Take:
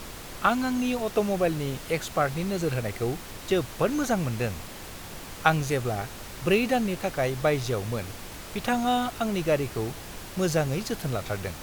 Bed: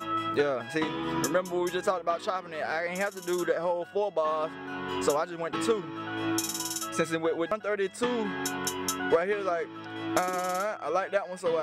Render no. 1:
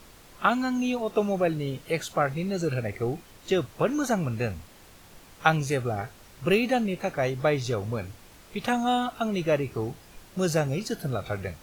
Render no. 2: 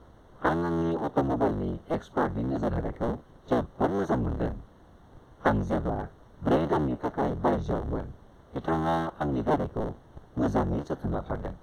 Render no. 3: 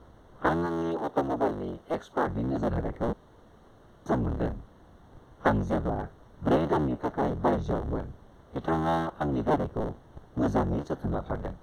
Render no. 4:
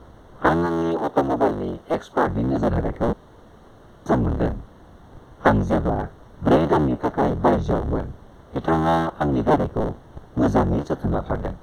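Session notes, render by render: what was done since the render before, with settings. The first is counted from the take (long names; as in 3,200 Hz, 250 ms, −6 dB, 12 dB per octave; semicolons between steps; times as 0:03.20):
noise reduction from a noise print 11 dB
sub-harmonics by changed cycles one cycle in 3, inverted; moving average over 18 samples
0:00.66–0:02.27: bass and treble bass −8 dB, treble +1 dB; 0:03.13–0:04.06: fill with room tone
level +7.5 dB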